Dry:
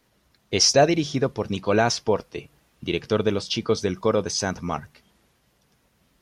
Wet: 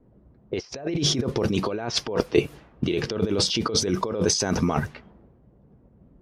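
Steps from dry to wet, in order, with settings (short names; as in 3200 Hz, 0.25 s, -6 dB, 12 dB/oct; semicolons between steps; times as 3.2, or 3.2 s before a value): negative-ratio compressor -32 dBFS, ratio -1; dynamic EQ 370 Hz, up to +6 dB, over -44 dBFS, Q 1.3; low-pass opened by the level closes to 380 Hz, open at -24.5 dBFS; gain +4.5 dB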